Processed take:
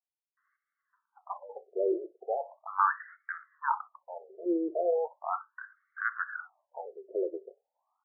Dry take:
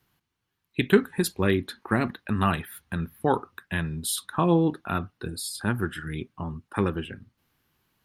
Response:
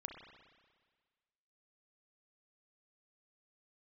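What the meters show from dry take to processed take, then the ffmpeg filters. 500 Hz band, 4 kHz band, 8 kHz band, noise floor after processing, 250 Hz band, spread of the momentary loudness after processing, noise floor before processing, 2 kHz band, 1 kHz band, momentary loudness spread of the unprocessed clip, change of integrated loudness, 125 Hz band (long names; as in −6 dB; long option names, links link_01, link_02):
−4.5 dB, below −40 dB, below −40 dB, below −85 dBFS, −12.5 dB, 17 LU, −81 dBFS, −5.0 dB, −2.0 dB, 13 LU, −6.0 dB, below −40 dB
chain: -filter_complex "[0:a]highpass=110,lowpass=2600,acrossover=split=360[link_01][link_02];[link_02]adelay=370[link_03];[link_01][link_03]amix=inputs=2:normalize=0,asplit=2[link_04][link_05];[1:a]atrim=start_sample=2205,atrim=end_sample=3969[link_06];[link_05][link_06]afir=irnorm=-1:irlink=0,volume=-4.5dB[link_07];[link_04][link_07]amix=inputs=2:normalize=0,afftfilt=real='re*between(b*sr/1024,470*pow(1600/470,0.5+0.5*sin(2*PI*0.38*pts/sr))/1.41,470*pow(1600/470,0.5+0.5*sin(2*PI*0.38*pts/sr))*1.41)':imag='im*between(b*sr/1024,470*pow(1600/470,0.5+0.5*sin(2*PI*0.38*pts/sr))/1.41,470*pow(1600/470,0.5+0.5*sin(2*PI*0.38*pts/sr))*1.41)':win_size=1024:overlap=0.75"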